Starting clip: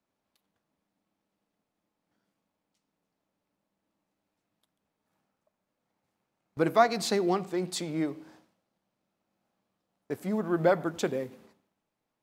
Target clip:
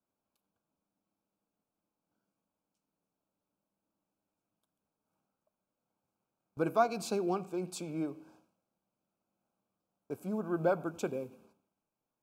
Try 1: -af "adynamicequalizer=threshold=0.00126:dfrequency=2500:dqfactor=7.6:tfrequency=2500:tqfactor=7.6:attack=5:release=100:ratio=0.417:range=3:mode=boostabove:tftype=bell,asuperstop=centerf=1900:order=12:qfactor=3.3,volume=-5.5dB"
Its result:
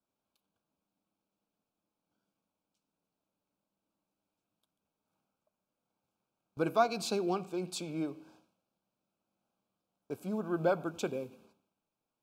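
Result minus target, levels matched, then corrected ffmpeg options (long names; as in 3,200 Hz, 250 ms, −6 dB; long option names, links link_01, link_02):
4,000 Hz band +6.0 dB
-af "adynamicequalizer=threshold=0.00126:dfrequency=2500:dqfactor=7.6:tfrequency=2500:tqfactor=7.6:attack=5:release=100:ratio=0.417:range=3:mode=boostabove:tftype=bell,asuperstop=centerf=1900:order=12:qfactor=3.3,equalizer=frequency=3700:width_type=o:width=1.1:gain=-7.5,volume=-5.5dB"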